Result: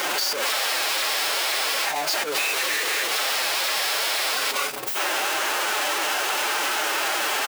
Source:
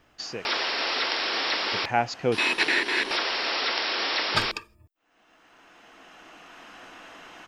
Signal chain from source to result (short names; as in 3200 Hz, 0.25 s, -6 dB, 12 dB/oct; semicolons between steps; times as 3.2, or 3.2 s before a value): infinite clipping; HPF 450 Hz 12 dB/oct; transient shaper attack +8 dB, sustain -10 dB; formant-preserving pitch shift +3.5 st; frequency-shifting echo 0.406 s, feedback 40%, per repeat -130 Hz, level -20 dB; on a send at -17 dB: reverb RT60 0.15 s, pre-delay 3 ms; on the sum: gain +5.5 dB